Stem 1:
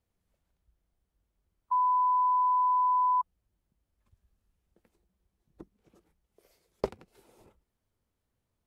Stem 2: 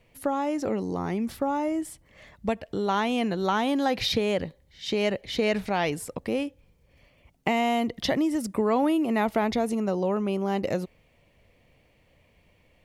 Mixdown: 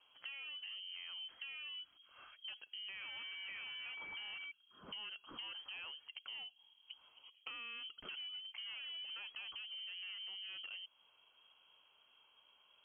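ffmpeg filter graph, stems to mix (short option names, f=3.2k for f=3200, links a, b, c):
-filter_complex "[0:a]lowpass=f=1k:w=0.5412,lowpass=f=1k:w=1.3066,acompressor=threshold=-44dB:ratio=2,adelay=1300,volume=0.5dB[a];[1:a]volume=-7.5dB[b];[a][b]amix=inputs=2:normalize=0,asoftclip=type=tanh:threshold=-32.5dB,lowpass=f=2.8k:t=q:w=0.5098,lowpass=f=2.8k:t=q:w=0.6013,lowpass=f=2.8k:t=q:w=0.9,lowpass=f=2.8k:t=q:w=2.563,afreqshift=-3300,acompressor=threshold=-49dB:ratio=3"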